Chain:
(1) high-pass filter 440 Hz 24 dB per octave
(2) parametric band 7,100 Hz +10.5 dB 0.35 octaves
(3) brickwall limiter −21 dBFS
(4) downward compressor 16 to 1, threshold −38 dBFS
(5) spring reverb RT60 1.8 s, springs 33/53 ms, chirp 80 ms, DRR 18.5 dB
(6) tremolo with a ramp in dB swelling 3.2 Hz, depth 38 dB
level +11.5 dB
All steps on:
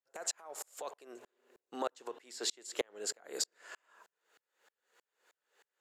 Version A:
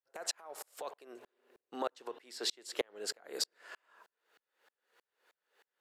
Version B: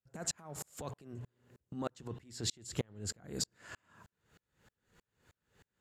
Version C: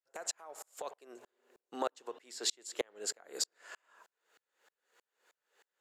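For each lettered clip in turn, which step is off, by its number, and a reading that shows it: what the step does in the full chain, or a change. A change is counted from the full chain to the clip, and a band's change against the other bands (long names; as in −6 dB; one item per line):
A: 2, 8 kHz band −4.0 dB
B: 1, 250 Hz band +9.5 dB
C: 3, average gain reduction 2.0 dB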